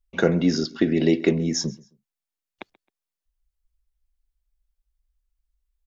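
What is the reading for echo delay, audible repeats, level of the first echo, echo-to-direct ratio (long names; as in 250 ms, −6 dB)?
133 ms, 2, −23.0 dB, −22.5 dB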